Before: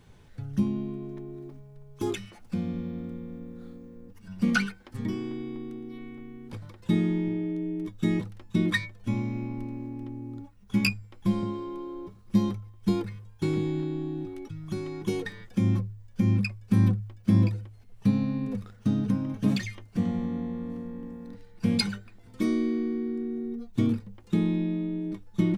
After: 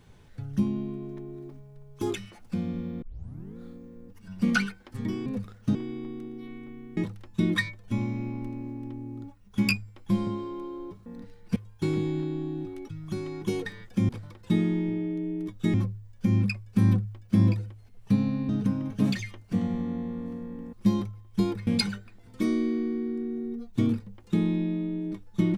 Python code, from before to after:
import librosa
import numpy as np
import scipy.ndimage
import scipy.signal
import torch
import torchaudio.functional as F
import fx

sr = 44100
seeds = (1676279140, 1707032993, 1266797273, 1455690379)

y = fx.edit(x, sr, fx.tape_start(start_s=3.02, length_s=0.55),
    fx.move(start_s=6.48, length_s=1.65, to_s=15.69),
    fx.swap(start_s=12.22, length_s=0.94, other_s=21.17, other_length_s=0.5),
    fx.move(start_s=18.44, length_s=0.49, to_s=5.26), tone=tone)